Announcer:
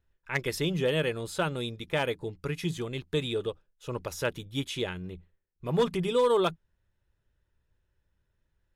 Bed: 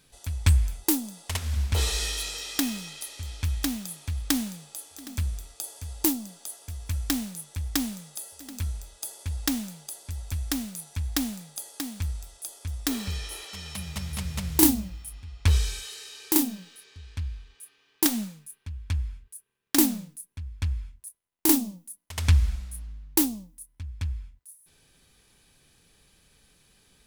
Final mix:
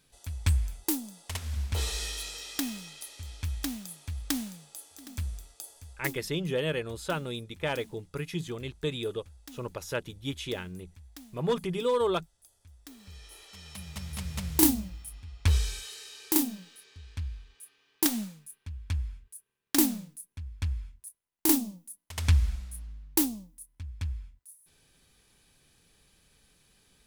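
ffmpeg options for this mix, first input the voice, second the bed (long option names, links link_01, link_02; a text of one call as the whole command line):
ffmpeg -i stem1.wav -i stem2.wav -filter_complex "[0:a]adelay=5700,volume=-2.5dB[link_01];[1:a]volume=13dB,afade=type=out:start_time=5.36:duration=0.95:silence=0.158489,afade=type=in:start_time=12.97:duration=1.44:silence=0.11885[link_02];[link_01][link_02]amix=inputs=2:normalize=0" out.wav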